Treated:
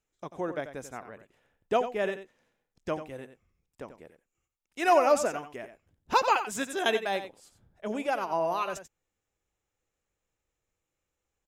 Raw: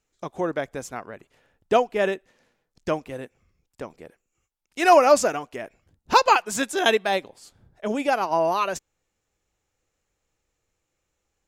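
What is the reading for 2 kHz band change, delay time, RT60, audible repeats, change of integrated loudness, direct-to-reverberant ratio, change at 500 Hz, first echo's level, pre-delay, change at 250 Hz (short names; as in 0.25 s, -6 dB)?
-7.0 dB, 90 ms, none, 1, -6.5 dB, none, -6.5 dB, -11.0 dB, none, -7.0 dB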